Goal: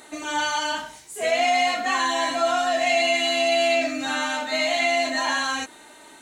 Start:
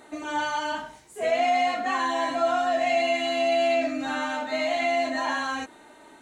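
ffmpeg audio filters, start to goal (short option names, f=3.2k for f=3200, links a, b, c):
-af "highshelf=f=2.2k:g=12"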